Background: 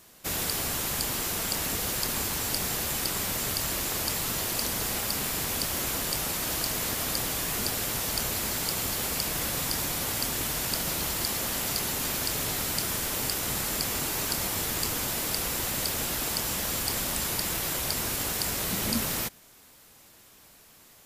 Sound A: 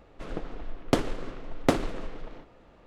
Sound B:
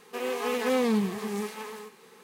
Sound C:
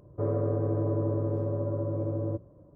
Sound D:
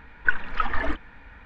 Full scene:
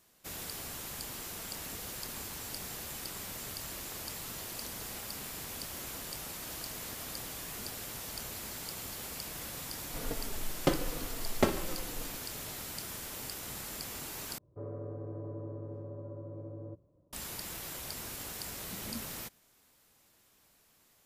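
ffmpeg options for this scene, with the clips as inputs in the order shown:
-filter_complex "[0:a]volume=-12dB[a];[1:a]asplit=2[b][c];[c]adelay=3.5,afreqshift=-0.97[d];[b][d]amix=inputs=2:normalize=1[e];[a]asplit=2[f][g];[f]atrim=end=14.384[h];[3:a]atrim=end=2.75,asetpts=PTS-STARTPTS,volume=-13.5dB[i];[g]atrim=start=17.126[j];[e]atrim=end=2.86,asetpts=PTS-STARTPTS,volume=-0.5dB,afade=t=in:d=0.004:c=hsin,afade=t=out:st=2.856:d=0.004:c=hsin,adelay=9740[k];[h][i]acrossfade=d=0.004:c1=hsin:c2=hsin[l];[l][j]acrossfade=d=0.004:c1=hsin:c2=hsin[m];[m][k]amix=inputs=2:normalize=0"

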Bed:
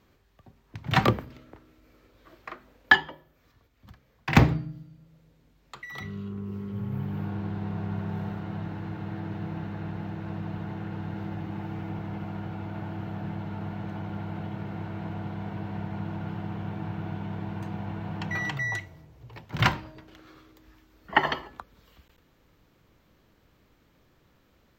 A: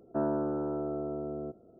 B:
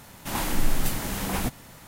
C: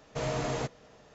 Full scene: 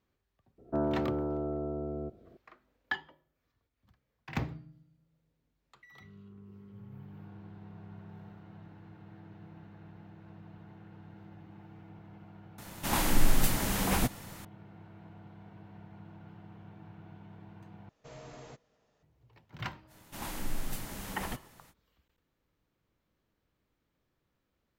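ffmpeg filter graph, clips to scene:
-filter_complex "[2:a]asplit=2[a][b];[0:a]volume=-16.5dB[c];[1:a]equalizer=f=62:t=o:w=1.8:g=12[d];[c]asplit=2[e][f];[e]atrim=end=17.894[g];[3:a]atrim=end=1.14,asetpts=PTS-STARTPTS,volume=-17dB[h];[f]atrim=start=19.026[i];[d]atrim=end=1.79,asetpts=PTS-STARTPTS,volume=-1.5dB,afade=t=in:d=0.004:c=hsin,afade=t=out:st=1.786:d=0.004:c=hsin,adelay=580[j];[a]atrim=end=1.87,asetpts=PTS-STARTPTS,volume=-0.5dB,afade=t=in:d=0.004:c=hsin,afade=t=out:st=1.866:d=0.004:c=hsin,adelay=12580[k];[b]atrim=end=1.87,asetpts=PTS-STARTPTS,volume=-11.5dB,afade=t=in:d=0.05,afade=t=out:st=1.82:d=0.05,adelay=19870[l];[g][h]acrossfade=d=0.004:c1=hsin:c2=hsin[m];[m][i]acrossfade=d=0.004:c1=hsin:c2=hsin[n];[n][j][k][l]amix=inputs=4:normalize=0"

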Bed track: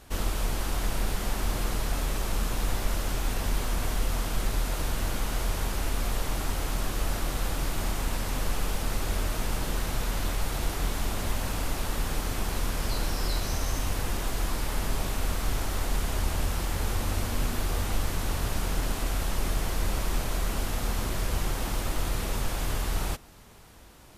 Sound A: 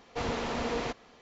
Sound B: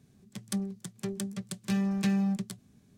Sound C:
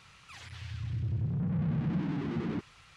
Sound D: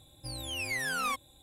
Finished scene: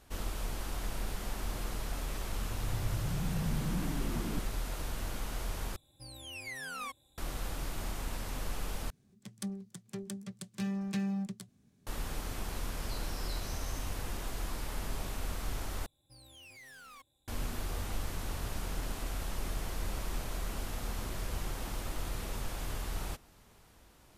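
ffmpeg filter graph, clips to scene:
-filter_complex "[4:a]asplit=2[a][b];[0:a]volume=-8.5dB[c];[b]asoftclip=type=hard:threshold=-35dB[d];[c]asplit=4[e][f][g][h];[e]atrim=end=5.764[i];[a]atrim=end=1.42,asetpts=PTS-STARTPTS,volume=-9dB[j];[f]atrim=start=7.176:end=8.904[k];[2:a]atrim=end=2.97,asetpts=PTS-STARTPTS,volume=-6.5dB[l];[g]atrim=start=11.866:end=15.864[m];[d]atrim=end=1.42,asetpts=PTS-STARTPTS,volume=-16.5dB[n];[h]atrim=start=17.276[o];[3:a]atrim=end=2.96,asetpts=PTS-STARTPTS,volume=-5dB,afade=t=in:d=0.004:c=hsin,afade=t=out:st=2.956:d=0.004:c=hsin,adelay=1800[p];[i][j]acrossfade=d=0.004:c1=hsin:c2=hsin[q];[q][k]acrossfade=d=0.004:c1=hsin:c2=hsin[r];[r][l]acrossfade=d=0.004:c1=hsin:c2=hsin[s];[s][m]acrossfade=d=0.004:c1=hsin:c2=hsin[t];[t][n]acrossfade=d=0.004:c1=hsin:c2=hsin[u];[u][o]acrossfade=d=0.004:c1=hsin:c2=hsin[v];[v][p]amix=inputs=2:normalize=0"

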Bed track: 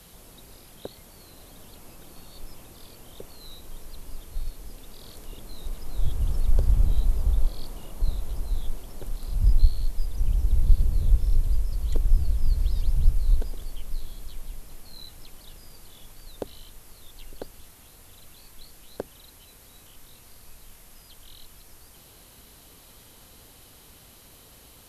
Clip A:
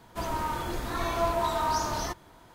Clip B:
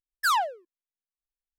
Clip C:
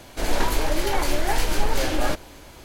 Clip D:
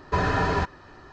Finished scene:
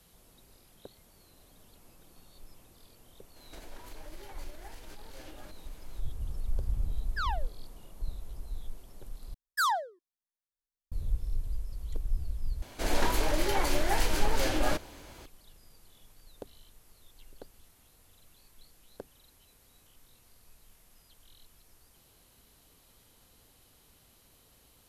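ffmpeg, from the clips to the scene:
-filter_complex "[3:a]asplit=2[a][b];[2:a]asplit=2[c][d];[0:a]volume=-11dB[e];[a]acompressor=threshold=-30dB:ratio=6:attack=3.2:release=140:knee=1:detection=peak[f];[c]lowpass=f=5k:w=0.5412,lowpass=f=5k:w=1.3066[g];[d]asuperstop=centerf=2500:order=20:qfactor=2.2[h];[e]asplit=3[i][j][k];[i]atrim=end=9.344[l];[h]atrim=end=1.58,asetpts=PTS-STARTPTS,volume=-4dB[m];[j]atrim=start=10.916:end=12.624[n];[b]atrim=end=2.64,asetpts=PTS-STARTPTS,volume=-5dB[o];[k]atrim=start=15.256[p];[f]atrim=end=2.64,asetpts=PTS-STARTPTS,volume=-13.5dB,afade=t=in:d=0.004:c=hsin,afade=t=out:st=2.636:d=0.004:c=hsin,adelay=3360[q];[g]atrim=end=1.58,asetpts=PTS-STARTPTS,volume=-10.5dB,afade=t=in:d=0.004:c=hsin,afade=t=out:st=1.576:d=0.004:c=hsin,adelay=6930[r];[l][m]acrossfade=d=0.004:c1=hsin:c2=hsin[s];[s][n]acrossfade=d=0.004:c1=hsin:c2=hsin[t];[t][o]acrossfade=d=0.004:c1=hsin:c2=hsin[u];[u][p]acrossfade=d=0.004:c1=hsin:c2=hsin[v];[v][q][r]amix=inputs=3:normalize=0"

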